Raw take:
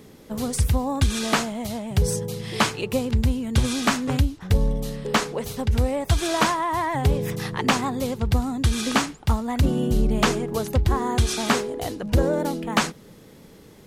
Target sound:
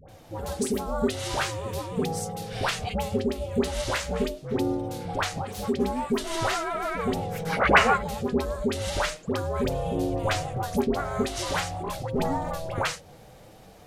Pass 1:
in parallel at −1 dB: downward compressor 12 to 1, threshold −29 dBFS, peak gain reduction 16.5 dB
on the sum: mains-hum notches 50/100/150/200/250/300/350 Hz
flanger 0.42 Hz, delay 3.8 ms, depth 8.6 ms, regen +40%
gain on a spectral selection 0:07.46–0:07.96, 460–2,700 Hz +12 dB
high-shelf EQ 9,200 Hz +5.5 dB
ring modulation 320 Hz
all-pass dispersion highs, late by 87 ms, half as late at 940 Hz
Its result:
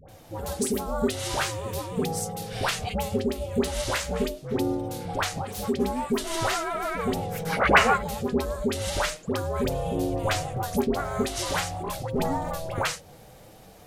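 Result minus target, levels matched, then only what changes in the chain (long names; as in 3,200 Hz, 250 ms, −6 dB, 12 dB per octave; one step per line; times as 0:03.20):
8,000 Hz band +2.5 dB
change: high-shelf EQ 9,200 Hz −2.5 dB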